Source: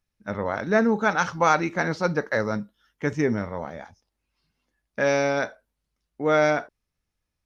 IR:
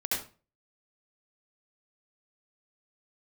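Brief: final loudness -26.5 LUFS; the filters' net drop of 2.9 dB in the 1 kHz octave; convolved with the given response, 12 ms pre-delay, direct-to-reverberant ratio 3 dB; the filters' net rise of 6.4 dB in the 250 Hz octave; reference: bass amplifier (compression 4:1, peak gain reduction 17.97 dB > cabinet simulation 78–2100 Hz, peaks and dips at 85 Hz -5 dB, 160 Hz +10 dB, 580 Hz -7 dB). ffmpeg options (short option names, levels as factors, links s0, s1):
-filter_complex "[0:a]equalizer=f=250:t=o:g=6,equalizer=f=1000:t=o:g=-3.5,asplit=2[s0][s1];[1:a]atrim=start_sample=2205,adelay=12[s2];[s1][s2]afir=irnorm=-1:irlink=0,volume=0.335[s3];[s0][s3]amix=inputs=2:normalize=0,acompressor=threshold=0.0224:ratio=4,highpass=f=78:w=0.5412,highpass=f=78:w=1.3066,equalizer=f=85:t=q:w=4:g=-5,equalizer=f=160:t=q:w=4:g=10,equalizer=f=580:t=q:w=4:g=-7,lowpass=f=2100:w=0.5412,lowpass=f=2100:w=1.3066,volume=2.51"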